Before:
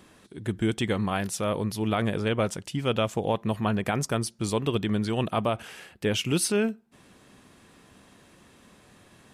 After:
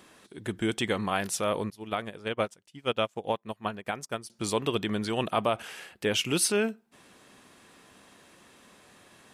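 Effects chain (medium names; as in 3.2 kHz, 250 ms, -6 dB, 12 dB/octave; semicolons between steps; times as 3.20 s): bass shelf 220 Hz -11.5 dB; 1.70–4.30 s: upward expansion 2.5:1, over -41 dBFS; trim +1.5 dB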